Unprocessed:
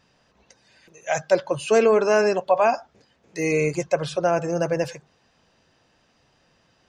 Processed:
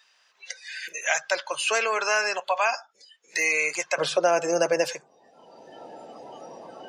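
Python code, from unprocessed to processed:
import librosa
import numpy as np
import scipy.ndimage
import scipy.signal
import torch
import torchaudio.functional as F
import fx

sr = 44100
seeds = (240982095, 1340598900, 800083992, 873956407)

y = fx.highpass(x, sr, hz=fx.steps((0.0, 1400.0), (3.98, 390.0)), slope=12)
y = fx.noise_reduce_blind(y, sr, reduce_db=22)
y = fx.band_squash(y, sr, depth_pct=70)
y = y * 10.0 ** (5.5 / 20.0)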